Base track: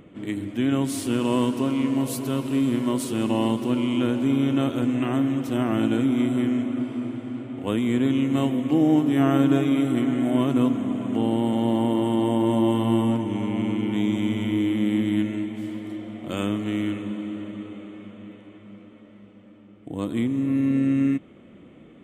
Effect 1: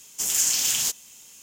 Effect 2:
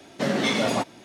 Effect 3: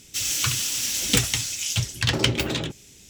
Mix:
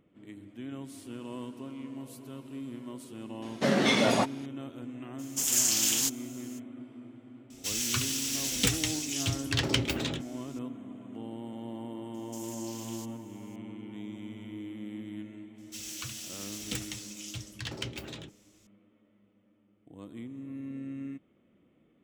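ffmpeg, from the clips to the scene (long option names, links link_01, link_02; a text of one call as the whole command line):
ffmpeg -i bed.wav -i cue0.wav -i cue1.wav -i cue2.wav -filter_complex "[1:a]asplit=2[link_01][link_02];[3:a]asplit=2[link_03][link_04];[0:a]volume=-18dB[link_05];[link_02]acompressor=threshold=-28dB:ratio=6:attack=3.2:release=140:knee=1:detection=peak[link_06];[2:a]atrim=end=1.04,asetpts=PTS-STARTPTS,volume=-1dB,afade=type=in:duration=0.004:curve=hsin,afade=type=out:start_time=1.036:duration=0.004:curve=hsin,adelay=3420[link_07];[link_01]atrim=end=1.42,asetpts=PTS-STARTPTS,volume=-3.5dB,afade=type=in:duration=0.02,afade=type=out:start_time=1.4:duration=0.02,adelay=5180[link_08];[link_03]atrim=end=3.09,asetpts=PTS-STARTPTS,volume=-6.5dB,afade=type=in:duration=0.004:curve=hsin,afade=type=out:start_time=3.086:duration=0.004:curve=hsin,adelay=7500[link_09];[link_06]atrim=end=1.42,asetpts=PTS-STARTPTS,volume=-15dB,afade=type=in:duration=0.004:curve=hsin,afade=type=out:start_time=1.416:duration=0.004:curve=hsin,adelay=12140[link_10];[link_04]atrim=end=3.09,asetpts=PTS-STARTPTS,volume=-16dB,afade=type=in:duration=0.004:curve=hsin,afade=type=out:start_time=3.086:duration=0.004:curve=hsin,adelay=15580[link_11];[link_05][link_07][link_08][link_09][link_10][link_11]amix=inputs=6:normalize=0" out.wav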